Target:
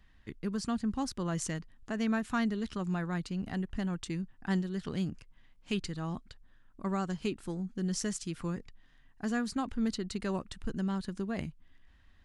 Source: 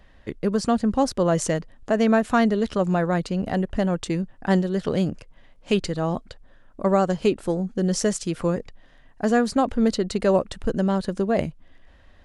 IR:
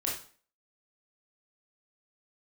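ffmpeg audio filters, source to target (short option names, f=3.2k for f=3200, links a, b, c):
-af "equalizer=f=560:w=1.5:g=-14,volume=-8.5dB"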